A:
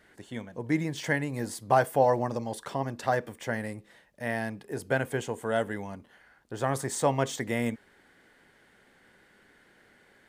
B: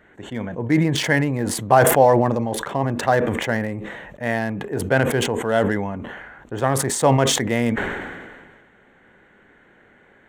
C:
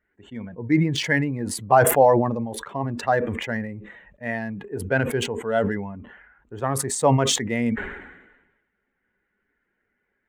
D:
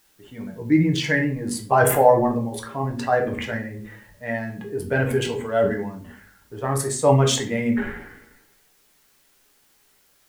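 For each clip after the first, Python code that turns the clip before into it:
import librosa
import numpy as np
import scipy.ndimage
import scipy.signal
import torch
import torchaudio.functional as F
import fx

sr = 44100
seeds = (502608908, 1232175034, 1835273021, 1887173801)

y1 = fx.wiener(x, sr, points=9)
y1 = fx.sustainer(y1, sr, db_per_s=35.0)
y1 = F.gain(torch.from_numpy(y1), 8.0).numpy()
y2 = fx.bin_expand(y1, sr, power=1.5)
y3 = fx.quant_dither(y2, sr, seeds[0], bits=10, dither='triangular')
y3 = fx.room_shoebox(y3, sr, seeds[1], volume_m3=40.0, walls='mixed', distance_m=0.49)
y3 = F.gain(torch.from_numpy(y3), -2.5).numpy()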